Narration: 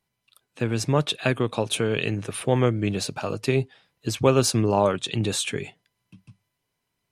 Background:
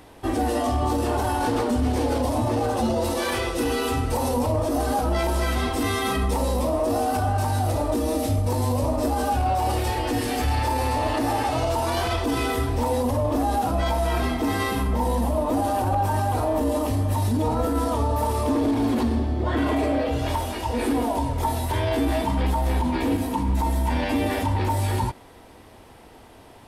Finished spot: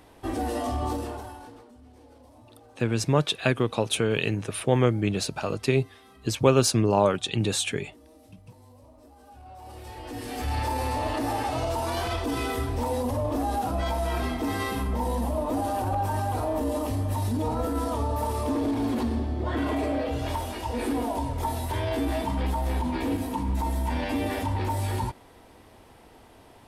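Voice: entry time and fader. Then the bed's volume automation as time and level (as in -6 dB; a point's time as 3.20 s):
2.20 s, -0.5 dB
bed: 0.92 s -5.5 dB
1.72 s -29.5 dB
9.18 s -29.5 dB
10.57 s -4.5 dB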